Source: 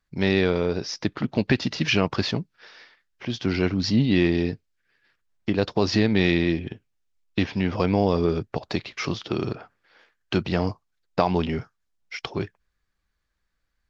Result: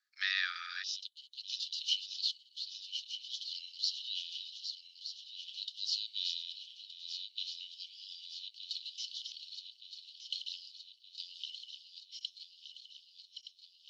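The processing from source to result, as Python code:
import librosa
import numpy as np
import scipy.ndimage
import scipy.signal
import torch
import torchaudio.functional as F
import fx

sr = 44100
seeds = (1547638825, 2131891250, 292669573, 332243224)

y = fx.reverse_delay_fb(x, sr, ms=610, feedback_pct=75, wet_db=-8.0)
y = fx.cheby_ripple_highpass(y, sr, hz=fx.steps((0.0, 1200.0), (0.82, 2900.0)), ripple_db=9)
y = y * librosa.db_to_amplitude(1.0)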